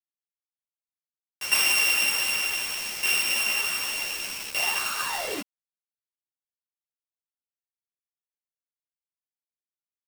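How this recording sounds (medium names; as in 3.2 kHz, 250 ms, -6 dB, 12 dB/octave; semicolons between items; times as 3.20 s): a buzz of ramps at a fixed pitch in blocks of 16 samples; tremolo saw down 0.66 Hz, depth 80%; a quantiser's noise floor 6-bit, dither none; a shimmering, thickened sound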